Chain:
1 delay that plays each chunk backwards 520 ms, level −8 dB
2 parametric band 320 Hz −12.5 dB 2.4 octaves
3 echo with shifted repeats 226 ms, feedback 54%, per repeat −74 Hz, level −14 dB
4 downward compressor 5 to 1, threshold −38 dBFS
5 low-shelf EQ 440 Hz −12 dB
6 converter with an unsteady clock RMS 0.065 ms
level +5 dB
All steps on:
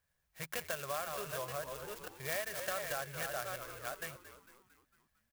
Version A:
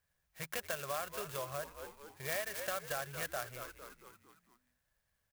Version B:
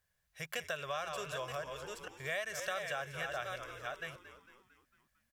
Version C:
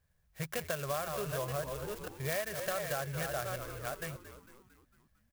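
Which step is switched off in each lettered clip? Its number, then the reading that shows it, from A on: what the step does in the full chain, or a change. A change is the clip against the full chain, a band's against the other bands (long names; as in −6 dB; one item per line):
1, change in momentary loudness spread +5 LU
6, 8 kHz band −5.0 dB
5, 125 Hz band +9.0 dB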